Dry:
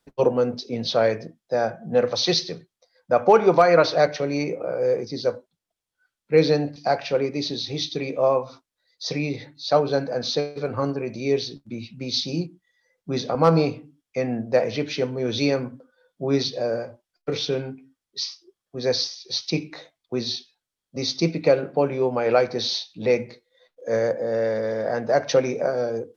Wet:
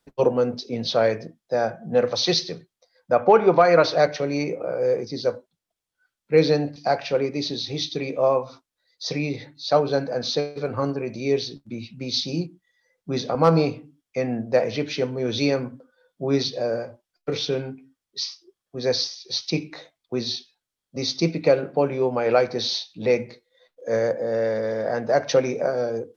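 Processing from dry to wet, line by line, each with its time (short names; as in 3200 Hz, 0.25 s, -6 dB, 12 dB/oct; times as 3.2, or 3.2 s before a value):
3.15–3.65 LPF 3500 Hz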